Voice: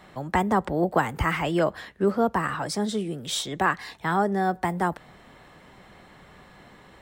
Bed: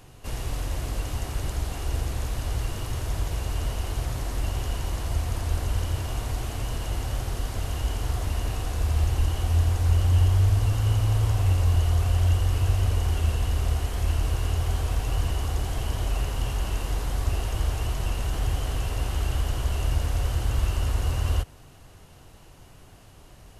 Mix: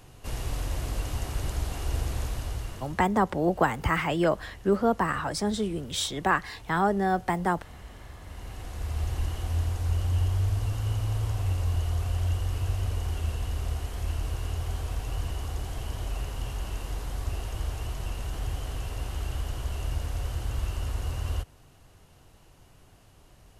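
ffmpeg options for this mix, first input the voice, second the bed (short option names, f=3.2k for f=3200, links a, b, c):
-filter_complex "[0:a]adelay=2650,volume=-1dB[a];[1:a]volume=11dB,afade=t=out:st=2.2:d=0.84:silence=0.141254,afade=t=in:st=8.2:d=0.91:silence=0.237137[b];[a][b]amix=inputs=2:normalize=0"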